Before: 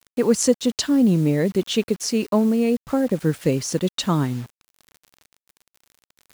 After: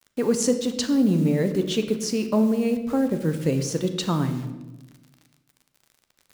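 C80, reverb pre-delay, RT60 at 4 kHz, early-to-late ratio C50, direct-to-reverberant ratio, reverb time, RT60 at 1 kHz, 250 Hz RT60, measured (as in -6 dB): 11.5 dB, 11 ms, 0.75 s, 9.5 dB, 7.0 dB, 1.2 s, 0.95 s, 1.5 s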